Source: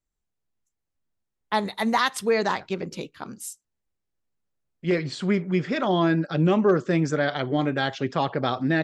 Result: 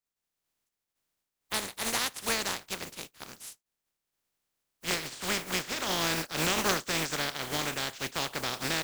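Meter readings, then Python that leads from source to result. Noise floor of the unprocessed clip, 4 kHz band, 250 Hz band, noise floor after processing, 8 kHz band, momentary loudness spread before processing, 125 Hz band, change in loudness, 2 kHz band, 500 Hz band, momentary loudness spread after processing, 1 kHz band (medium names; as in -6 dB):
-82 dBFS, +2.5 dB, -14.5 dB, under -85 dBFS, +8.0 dB, 14 LU, -14.0 dB, -6.5 dB, -3.5 dB, -12.5 dB, 13 LU, -8.5 dB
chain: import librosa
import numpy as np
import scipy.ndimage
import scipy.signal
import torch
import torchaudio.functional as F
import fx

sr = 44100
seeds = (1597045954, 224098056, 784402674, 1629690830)

y = fx.spec_flatten(x, sr, power=0.25)
y = y * 10.0 ** (-8.0 / 20.0)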